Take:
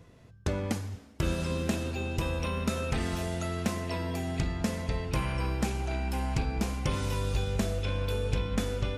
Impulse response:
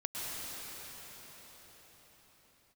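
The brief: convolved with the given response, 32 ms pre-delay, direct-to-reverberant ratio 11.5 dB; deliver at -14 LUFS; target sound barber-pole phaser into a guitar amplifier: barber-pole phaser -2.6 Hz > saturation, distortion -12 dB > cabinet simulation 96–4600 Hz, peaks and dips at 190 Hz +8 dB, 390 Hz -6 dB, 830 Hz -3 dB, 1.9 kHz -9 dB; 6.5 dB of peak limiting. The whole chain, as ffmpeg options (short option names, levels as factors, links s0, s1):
-filter_complex "[0:a]alimiter=limit=0.0631:level=0:latency=1,asplit=2[s0][s1];[1:a]atrim=start_sample=2205,adelay=32[s2];[s1][s2]afir=irnorm=-1:irlink=0,volume=0.158[s3];[s0][s3]amix=inputs=2:normalize=0,asplit=2[s4][s5];[s5]afreqshift=-2.6[s6];[s4][s6]amix=inputs=2:normalize=1,asoftclip=threshold=0.02,highpass=96,equalizer=f=190:t=q:w=4:g=8,equalizer=f=390:t=q:w=4:g=-6,equalizer=f=830:t=q:w=4:g=-3,equalizer=f=1900:t=q:w=4:g=-9,lowpass=f=4600:w=0.5412,lowpass=f=4600:w=1.3066,volume=21.1"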